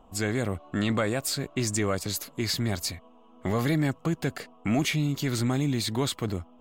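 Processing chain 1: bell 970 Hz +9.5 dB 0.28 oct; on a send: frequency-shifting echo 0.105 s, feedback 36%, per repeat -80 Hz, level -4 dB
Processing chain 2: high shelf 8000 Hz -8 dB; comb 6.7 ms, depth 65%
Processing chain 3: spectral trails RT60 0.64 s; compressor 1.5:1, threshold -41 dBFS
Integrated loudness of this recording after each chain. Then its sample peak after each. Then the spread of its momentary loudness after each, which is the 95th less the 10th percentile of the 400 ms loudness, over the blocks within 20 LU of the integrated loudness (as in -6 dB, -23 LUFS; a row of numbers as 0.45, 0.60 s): -27.0, -27.0, -33.0 LUFS; -11.5, -12.5, -19.0 dBFS; 6, 9, 5 LU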